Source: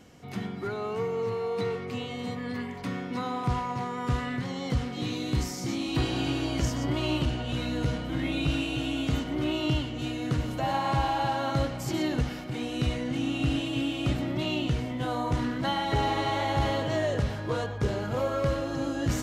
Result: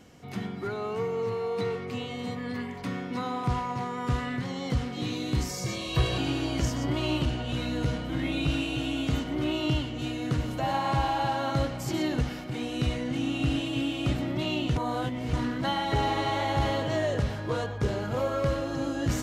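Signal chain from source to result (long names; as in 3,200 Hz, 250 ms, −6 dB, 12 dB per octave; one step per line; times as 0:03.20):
0:05.49–0:06.18: comb filter 1.8 ms, depth 92%
0:14.76–0:15.33: reverse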